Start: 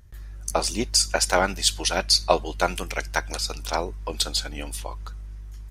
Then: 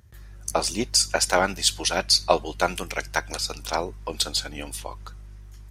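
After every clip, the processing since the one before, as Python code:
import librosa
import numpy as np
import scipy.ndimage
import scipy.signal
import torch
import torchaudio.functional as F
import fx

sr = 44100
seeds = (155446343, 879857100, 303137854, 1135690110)

y = scipy.signal.sosfilt(scipy.signal.butter(4, 57.0, 'highpass', fs=sr, output='sos'), x)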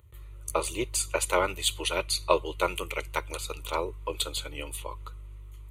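y = fx.fixed_phaser(x, sr, hz=1100.0, stages=8)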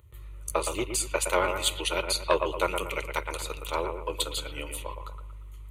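y = fx.echo_bbd(x, sr, ms=116, stages=2048, feedback_pct=38, wet_db=-6.5)
y = fx.transformer_sat(y, sr, knee_hz=780.0)
y = y * librosa.db_to_amplitude(1.0)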